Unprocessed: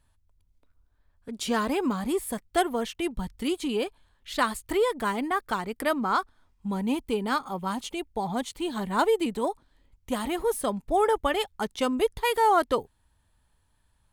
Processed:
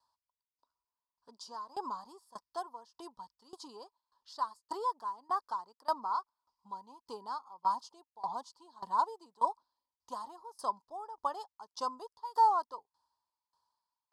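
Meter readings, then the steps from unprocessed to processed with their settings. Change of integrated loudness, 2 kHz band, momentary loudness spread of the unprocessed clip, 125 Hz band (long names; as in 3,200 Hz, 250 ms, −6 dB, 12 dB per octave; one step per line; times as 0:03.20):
−8.5 dB, −23.5 dB, 9 LU, below −25 dB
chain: dynamic equaliser 3,300 Hz, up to −7 dB, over −45 dBFS, Q 1
pair of resonant band-passes 2,200 Hz, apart 2.3 octaves
tremolo with a ramp in dB decaying 1.7 Hz, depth 21 dB
level +8 dB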